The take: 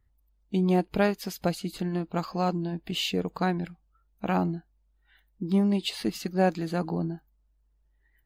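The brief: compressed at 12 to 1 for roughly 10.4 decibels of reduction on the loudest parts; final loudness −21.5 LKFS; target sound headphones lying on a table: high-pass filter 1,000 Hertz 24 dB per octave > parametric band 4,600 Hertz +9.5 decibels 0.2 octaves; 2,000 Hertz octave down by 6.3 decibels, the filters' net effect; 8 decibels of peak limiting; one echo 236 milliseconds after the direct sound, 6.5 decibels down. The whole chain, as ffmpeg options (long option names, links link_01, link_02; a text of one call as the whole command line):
ffmpeg -i in.wav -af "equalizer=frequency=2000:width_type=o:gain=-9,acompressor=threshold=-29dB:ratio=12,alimiter=level_in=2.5dB:limit=-24dB:level=0:latency=1,volume=-2.5dB,highpass=frequency=1000:width=0.5412,highpass=frequency=1000:width=1.3066,equalizer=frequency=4600:width_type=o:width=0.2:gain=9.5,aecho=1:1:236:0.473,volume=19dB" out.wav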